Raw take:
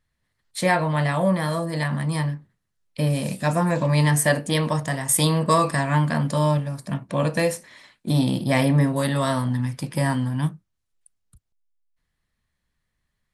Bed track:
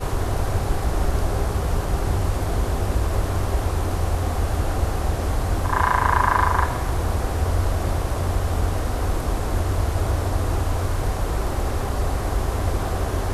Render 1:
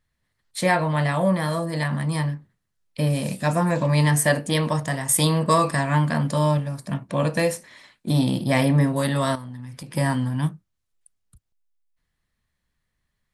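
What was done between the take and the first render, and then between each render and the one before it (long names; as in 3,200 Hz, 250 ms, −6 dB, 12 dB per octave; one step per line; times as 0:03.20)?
0:09.35–0:09.93: downward compressor 8 to 1, threshold −33 dBFS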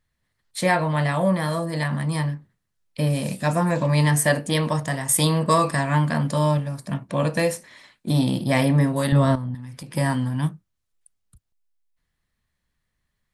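0:09.12–0:09.55: spectral tilt −3 dB per octave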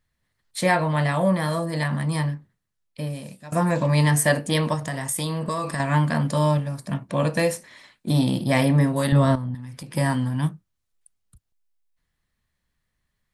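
0:02.27–0:03.52: fade out, to −22 dB
0:04.74–0:05.80: downward compressor 4 to 1, threshold −24 dBFS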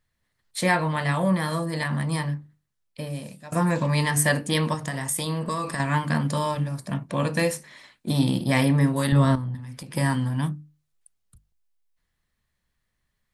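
mains-hum notches 50/100/150/200/250/300 Hz
dynamic equaliser 630 Hz, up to −6 dB, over −37 dBFS, Q 2.6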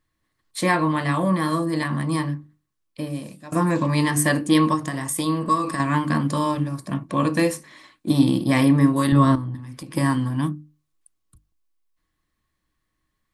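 hollow resonant body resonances 310/1,100 Hz, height 14 dB, ringing for 75 ms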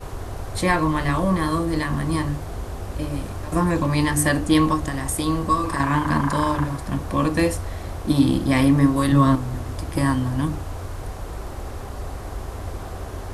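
mix in bed track −8.5 dB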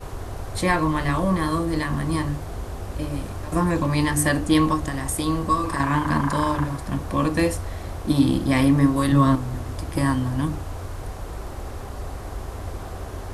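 level −1 dB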